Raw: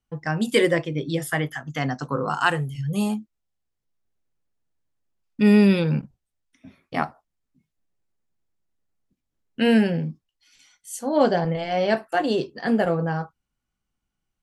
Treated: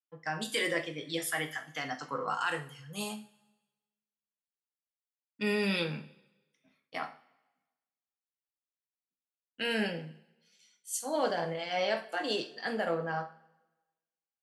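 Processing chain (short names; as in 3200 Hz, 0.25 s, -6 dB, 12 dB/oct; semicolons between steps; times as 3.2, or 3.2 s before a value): HPF 810 Hz 6 dB/oct; bell 4000 Hz +2.5 dB 1.7 oct; limiter -17.5 dBFS, peak gain reduction 10.5 dB; two-slope reverb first 0.41 s, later 1.7 s, from -18 dB, DRR 4.5 dB; three-band expander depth 40%; gain -4.5 dB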